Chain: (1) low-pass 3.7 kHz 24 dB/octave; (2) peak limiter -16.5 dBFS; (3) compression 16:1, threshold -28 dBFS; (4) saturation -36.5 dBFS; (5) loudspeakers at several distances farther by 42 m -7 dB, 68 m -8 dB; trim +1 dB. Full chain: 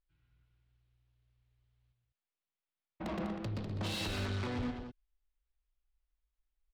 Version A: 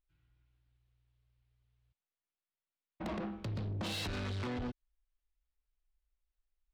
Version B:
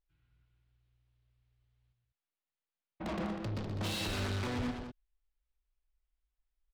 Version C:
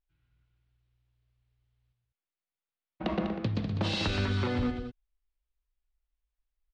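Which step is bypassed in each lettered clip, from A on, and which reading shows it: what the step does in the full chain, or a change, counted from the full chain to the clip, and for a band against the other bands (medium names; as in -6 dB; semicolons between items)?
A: 5, echo-to-direct -4.5 dB to none; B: 3, mean gain reduction 5.0 dB; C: 4, distortion -8 dB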